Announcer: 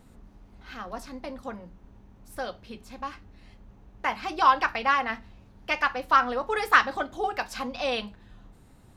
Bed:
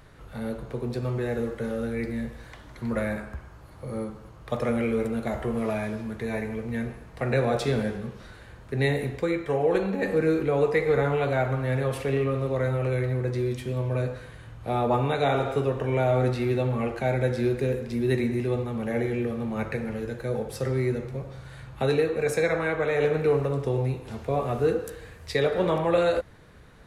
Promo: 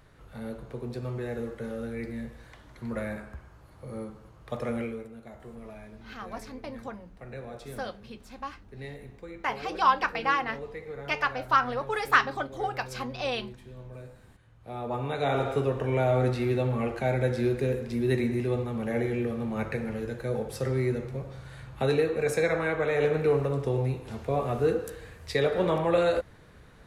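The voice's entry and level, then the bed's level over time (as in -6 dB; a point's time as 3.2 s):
5.40 s, -2.5 dB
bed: 4.81 s -5.5 dB
5.08 s -17 dB
14.37 s -17 dB
15.41 s -1.5 dB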